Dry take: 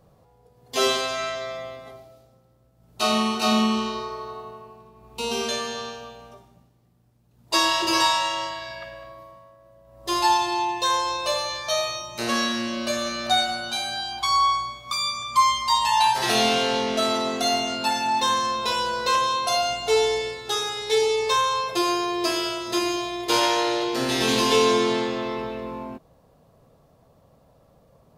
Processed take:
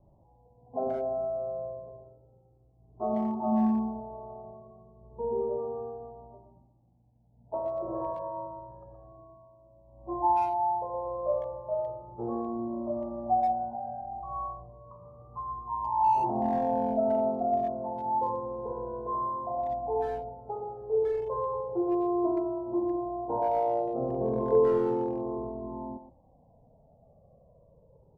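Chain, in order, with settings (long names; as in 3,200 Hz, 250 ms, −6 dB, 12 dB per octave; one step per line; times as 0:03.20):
Butterworth low-pass 900 Hz 48 dB per octave
far-end echo of a speakerphone 120 ms, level −8 dB
flanger whose copies keep moving one way falling 0.31 Hz
level +1 dB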